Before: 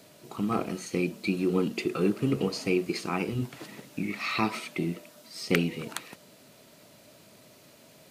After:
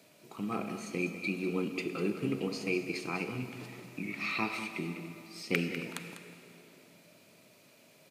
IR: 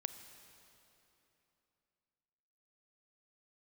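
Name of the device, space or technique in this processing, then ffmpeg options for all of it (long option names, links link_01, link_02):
PA in a hall: -filter_complex "[0:a]highpass=110,equalizer=frequency=2400:width_type=o:width=0.26:gain=7.5,aecho=1:1:198:0.282[link_01];[1:a]atrim=start_sample=2205[link_02];[link_01][link_02]afir=irnorm=-1:irlink=0,volume=-5dB"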